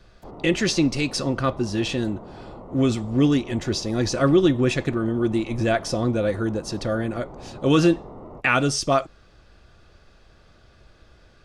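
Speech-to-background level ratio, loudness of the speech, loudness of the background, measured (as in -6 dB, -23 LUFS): 18.5 dB, -23.0 LUFS, -41.5 LUFS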